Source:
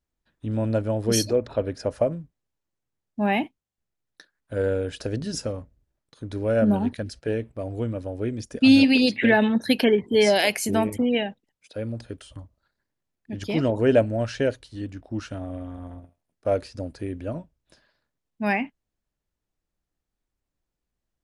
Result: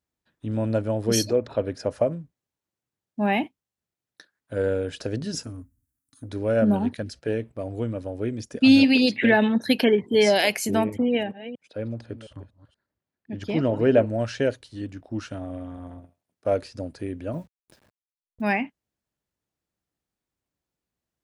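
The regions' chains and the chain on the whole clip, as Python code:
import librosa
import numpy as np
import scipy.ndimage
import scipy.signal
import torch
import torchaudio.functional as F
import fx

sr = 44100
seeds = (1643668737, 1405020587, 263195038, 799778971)

y = fx.chain(x, sr, fx.curve_eq(hz=(110.0, 180.0, 270.0, 420.0, 1300.0, 3000.0, 4500.0, 10000.0), db=(0, -11, 5, -27, -6, -12, -7, 11)),
    fx.transformer_sat(knee_hz=200.0), at=(5.43, 6.29))
y = fx.chain(y, sr, fx.reverse_delay(ms=238, wet_db=-13.0),
    fx.lowpass(hz=2700.0, slope=6), at=(10.84, 14.1))
y = fx.chain(y, sr, fx.delta_hold(step_db=-56.5),
    fx.low_shelf(hz=140.0, db=6.0),
    fx.pre_swell(db_per_s=84.0), at=(17.33, 18.42))
y = scipy.signal.sosfilt(scipy.signal.butter(2, 84.0, 'highpass', fs=sr, output='sos'), y)
y = fx.dynamic_eq(y, sr, hz=9300.0, q=6.3, threshold_db=-59.0, ratio=4.0, max_db=-6)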